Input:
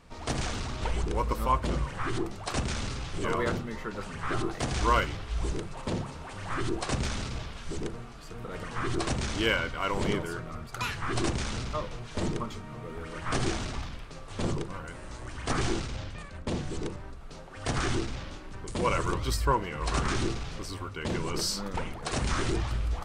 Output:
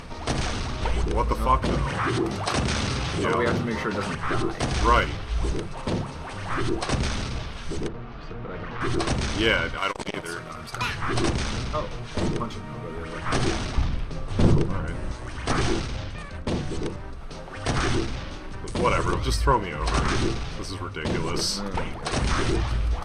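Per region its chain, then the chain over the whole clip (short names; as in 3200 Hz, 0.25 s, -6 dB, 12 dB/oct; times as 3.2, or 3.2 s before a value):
1.62–4.15 HPF 67 Hz + fast leveller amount 50%
7.88–8.81 hard clip -34.5 dBFS + air absorption 230 m
9.77–10.74 tilt +2 dB/oct + core saturation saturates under 870 Hz
13.77–15.12 low shelf 390 Hz +9 dB + Doppler distortion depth 0.26 ms
whole clip: LPF 10000 Hz 12 dB/oct; notch 7200 Hz, Q 6.1; upward compressor, threshold -35 dBFS; gain +5 dB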